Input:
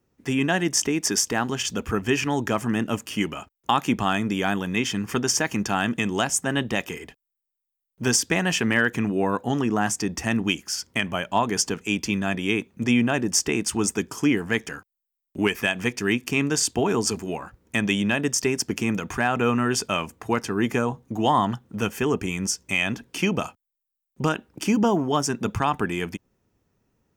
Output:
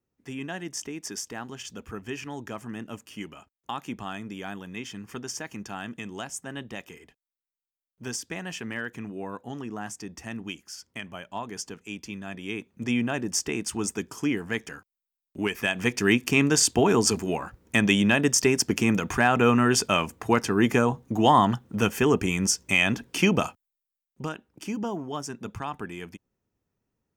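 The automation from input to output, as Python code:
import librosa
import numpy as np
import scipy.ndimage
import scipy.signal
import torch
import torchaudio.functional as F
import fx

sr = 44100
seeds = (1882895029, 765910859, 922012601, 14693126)

y = fx.gain(x, sr, db=fx.line((12.24, -12.5), (12.95, -5.5), (15.46, -5.5), (16.01, 2.0), (23.44, 2.0), (24.33, -10.5)))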